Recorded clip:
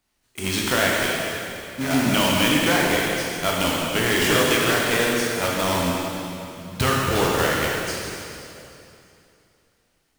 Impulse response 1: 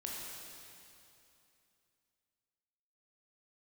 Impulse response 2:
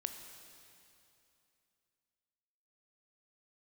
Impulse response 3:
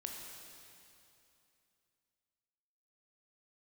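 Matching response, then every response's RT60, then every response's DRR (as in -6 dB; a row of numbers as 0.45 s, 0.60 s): 1; 2.8 s, 2.8 s, 2.8 s; -3.5 dB, 6.0 dB, 0.5 dB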